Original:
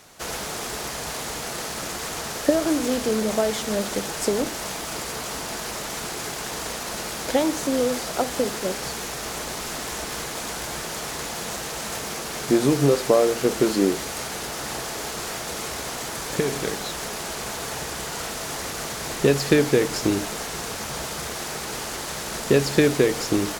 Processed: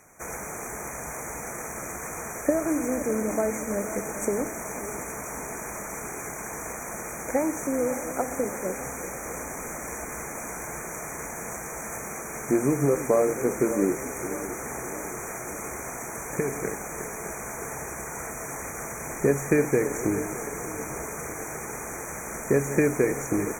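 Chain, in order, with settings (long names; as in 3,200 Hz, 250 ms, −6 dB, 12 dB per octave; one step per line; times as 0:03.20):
feedback delay that plays each chunk backwards 306 ms, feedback 72%, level −12.5 dB
linear-phase brick-wall band-stop 2,500–5,700 Hz
level −4 dB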